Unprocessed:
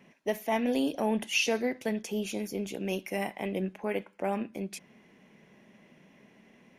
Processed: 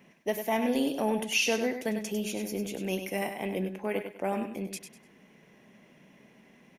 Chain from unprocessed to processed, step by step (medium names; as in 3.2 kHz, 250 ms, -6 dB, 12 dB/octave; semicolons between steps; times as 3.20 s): treble shelf 9.5 kHz +7 dB; on a send: feedback delay 99 ms, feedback 28%, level -8 dB